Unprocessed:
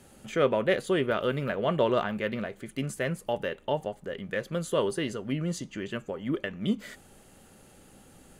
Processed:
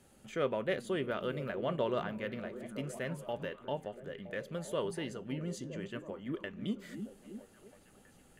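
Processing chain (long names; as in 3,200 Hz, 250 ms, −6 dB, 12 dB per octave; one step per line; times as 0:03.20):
echo through a band-pass that steps 322 ms, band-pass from 180 Hz, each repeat 0.7 octaves, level −6 dB
level −8.5 dB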